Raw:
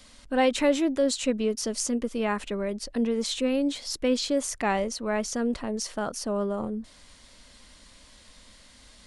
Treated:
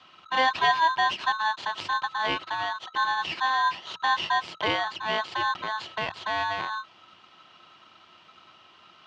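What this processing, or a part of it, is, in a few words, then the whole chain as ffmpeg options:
ring modulator pedal into a guitar cabinet: -af "aeval=exprs='val(0)*sgn(sin(2*PI*1300*n/s))':c=same,highpass=76,equalizer=f=100:t=q:w=4:g=8,equalizer=f=170:t=q:w=4:g=8,equalizer=f=350:t=q:w=4:g=8,equalizer=f=650:t=q:w=4:g=4,equalizer=f=970:t=q:w=4:g=10,equalizer=f=2.9k:t=q:w=4:g=10,lowpass=f=4.3k:w=0.5412,lowpass=f=4.3k:w=1.3066,volume=-4dB"

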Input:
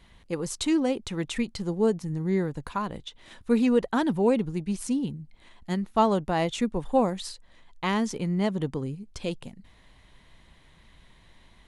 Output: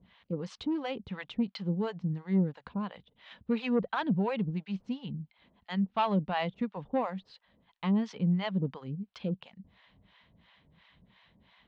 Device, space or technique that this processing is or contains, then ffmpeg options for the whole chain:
guitar amplifier with harmonic tremolo: -filter_complex "[0:a]acrossover=split=600[a][b];[a]aeval=exprs='val(0)*(1-1/2+1/2*cos(2*PI*2.9*n/s))':c=same[c];[b]aeval=exprs='val(0)*(1-1/2-1/2*cos(2*PI*2.9*n/s))':c=same[d];[c][d]amix=inputs=2:normalize=0,asoftclip=type=tanh:threshold=-19.5dB,highpass=84,equalizer=f=190:t=q:w=4:g=6,equalizer=f=350:t=q:w=4:g=-7,equalizer=f=3k:t=q:w=4:g=3,lowpass=f=4k:w=0.5412,lowpass=f=4k:w=1.3066"

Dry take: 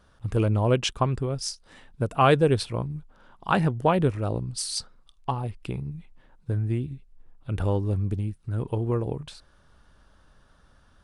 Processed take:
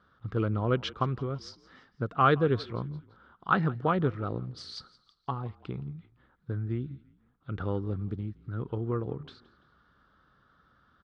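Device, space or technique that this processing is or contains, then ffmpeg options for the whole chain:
frequency-shifting delay pedal into a guitar cabinet: -filter_complex "[0:a]asplit=4[a][b][c][d];[b]adelay=169,afreqshift=-40,volume=-21dB[e];[c]adelay=338,afreqshift=-80,volume=-27.7dB[f];[d]adelay=507,afreqshift=-120,volume=-34.5dB[g];[a][e][f][g]amix=inputs=4:normalize=0,highpass=86,equalizer=f=90:t=q:w=4:g=-4,equalizer=f=610:t=q:w=4:g=-6,equalizer=f=890:t=q:w=4:g=-5,equalizer=f=1.3k:t=q:w=4:g=9,equalizer=f=2.6k:t=q:w=4:g=-9,lowpass=f=4.1k:w=0.5412,lowpass=f=4.1k:w=1.3066,volume=-4dB"

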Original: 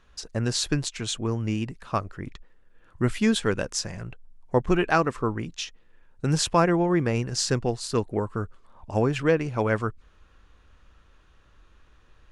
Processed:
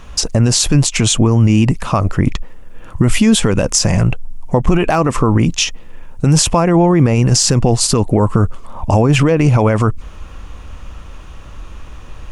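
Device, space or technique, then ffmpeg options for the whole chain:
loud club master: -af "acompressor=threshold=-25dB:ratio=2,asoftclip=type=hard:threshold=-14.5dB,alimiter=level_in=25dB:limit=-1dB:release=50:level=0:latency=1,equalizer=f=400:t=o:w=0.67:g=-5,equalizer=f=1.6k:t=o:w=0.67:g=-9,equalizer=f=4k:t=o:w=0.67:g=-7"

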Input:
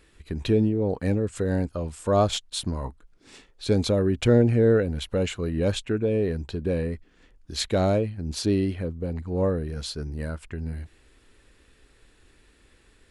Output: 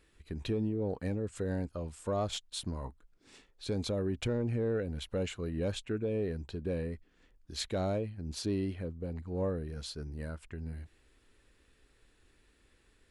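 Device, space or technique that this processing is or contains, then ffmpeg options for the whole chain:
soft clipper into limiter: -af "asoftclip=type=tanh:threshold=-9.5dB,alimiter=limit=-16dB:level=0:latency=1:release=182,volume=-8.5dB"

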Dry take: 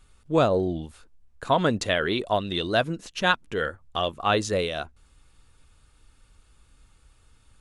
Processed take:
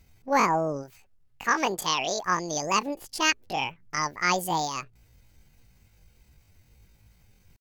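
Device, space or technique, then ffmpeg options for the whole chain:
chipmunk voice: -filter_complex "[0:a]asplit=3[a][b][c];[a]afade=t=out:st=0.83:d=0.02[d];[b]lowshelf=f=200:g=-6,afade=t=in:st=0.83:d=0.02,afade=t=out:st=2.27:d=0.02[e];[c]afade=t=in:st=2.27:d=0.02[f];[d][e][f]amix=inputs=3:normalize=0,asetrate=76340,aresample=44100,atempo=0.577676,volume=-1.5dB"

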